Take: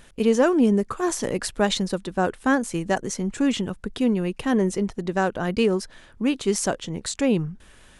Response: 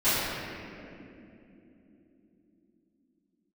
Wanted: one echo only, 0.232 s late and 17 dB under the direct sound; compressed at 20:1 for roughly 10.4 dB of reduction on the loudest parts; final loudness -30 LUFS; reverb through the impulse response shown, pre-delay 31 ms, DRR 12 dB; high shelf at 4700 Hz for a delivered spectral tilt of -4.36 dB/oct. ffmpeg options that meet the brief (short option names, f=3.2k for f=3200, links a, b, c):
-filter_complex "[0:a]highshelf=f=4.7k:g=3,acompressor=threshold=-24dB:ratio=20,aecho=1:1:232:0.141,asplit=2[a][b];[1:a]atrim=start_sample=2205,adelay=31[c];[b][c]afir=irnorm=-1:irlink=0,volume=-28dB[d];[a][d]amix=inputs=2:normalize=0,volume=-0.5dB"